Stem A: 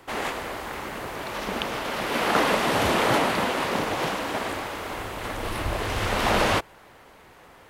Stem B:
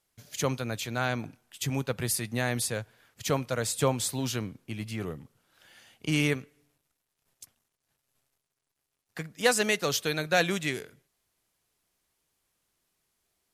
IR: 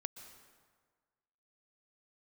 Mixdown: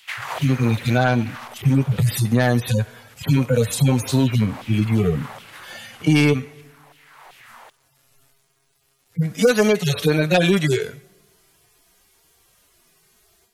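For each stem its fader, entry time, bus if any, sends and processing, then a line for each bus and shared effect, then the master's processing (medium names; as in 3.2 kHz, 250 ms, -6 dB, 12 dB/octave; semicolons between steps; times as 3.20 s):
-2.0 dB, 0.00 s, send -13.5 dB, compressor with a negative ratio -31 dBFS, ratio -0.5; LFO high-pass saw down 2.6 Hz 610–3400 Hz; auto duck -16 dB, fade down 1.60 s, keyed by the second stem
+2.0 dB, 0.00 s, send -23 dB, harmonic-percussive separation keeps harmonic; sine folder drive 4 dB, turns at -13.5 dBFS; level rider gain up to 12 dB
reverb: on, RT60 1.6 s, pre-delay 113 ms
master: compression 2.5:1, threshold -16 dBFS, peak gain reduction 8.5 dB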